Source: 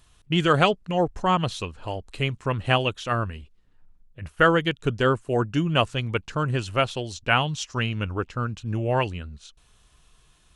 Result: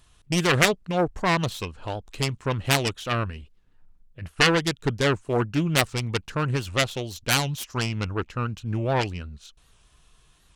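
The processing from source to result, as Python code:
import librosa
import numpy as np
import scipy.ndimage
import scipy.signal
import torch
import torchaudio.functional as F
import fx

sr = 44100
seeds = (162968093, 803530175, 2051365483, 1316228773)

y = fx.self_delay(x, sr, depth_ms=0.47)
y = fx.record_warp(y, sr, rpm=78.0, depth_cents=160.0)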